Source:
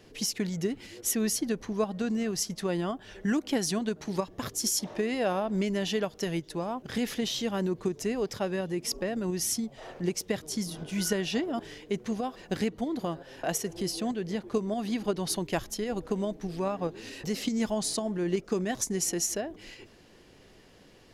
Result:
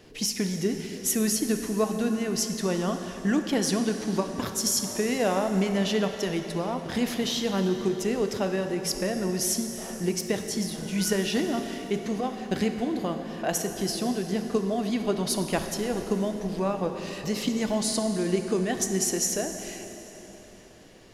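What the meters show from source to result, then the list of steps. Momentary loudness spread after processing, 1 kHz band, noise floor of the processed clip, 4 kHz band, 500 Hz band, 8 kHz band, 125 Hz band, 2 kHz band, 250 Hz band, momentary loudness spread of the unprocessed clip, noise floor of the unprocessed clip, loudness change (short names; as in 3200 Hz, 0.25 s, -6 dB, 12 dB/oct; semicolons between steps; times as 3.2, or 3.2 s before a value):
6 LU, +3.5 dB, -45 dBFS, +3.5 dB, +3.5 dB, +3.5 dB, +4.0 dB, +3.5 dB, +4.0 dB, 6 LU, -56 dBFS, +3.5 dB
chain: plate-style reverb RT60 3.8 s, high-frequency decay 0.8×, DRR 5.5 dB; gain +2.5 dB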